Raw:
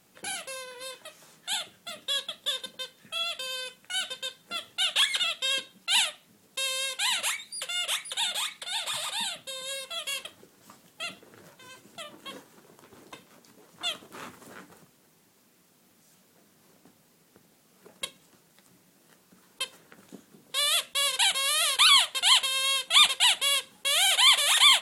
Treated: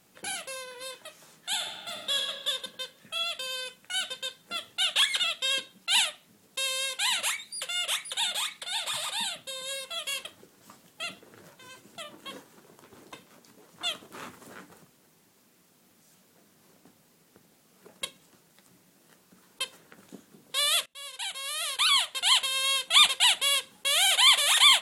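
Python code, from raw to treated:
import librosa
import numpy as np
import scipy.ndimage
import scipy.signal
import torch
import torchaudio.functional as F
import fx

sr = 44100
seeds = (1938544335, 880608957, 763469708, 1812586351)

y = fx.reverb_throw(x, sr, start_s=1.53, length_s=0.72, rt60_s=1.8, drr_db=1.5)
y = fx.edit(y, sr, fx.fade_in_from(start_s=20.86, length_s=1.89, floor_db=-21.5), tone=tone)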